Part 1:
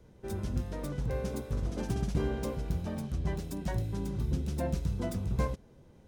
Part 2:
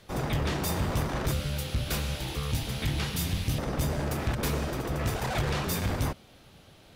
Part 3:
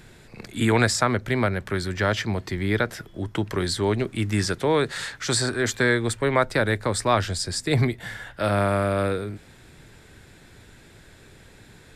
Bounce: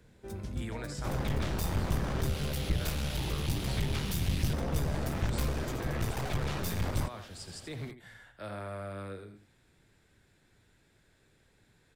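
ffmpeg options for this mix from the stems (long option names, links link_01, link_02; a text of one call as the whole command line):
ffmpeg -i stem1.wav -i stem2.wav -i stem3.wav -filter_complex "[0:a]volume=-4.5dB[link_01];[1:a]aeval=exprs='clip(val(0),-1,0.0158)':channel_layout=same,adelay=950,volume=1.5dB[link_02];[2:a]alimiter=limit=-13.5dB:level=0:latency=1:release=284,volume=-17.5dB,asplit=2[link_03][link_04];[link_04]volume=-9.5dB,aecho=0:1:82:1[link_05];[link_01][link_02][link_03][link_05]amix=inputs=4:normalize=0,acrossover=split=170[link_06][link_07];[link_07]acompressor=threshold=-35dB:ratio=4[link_08];[link_06][link_08]amix=inputs=2:normalize=0" out.wav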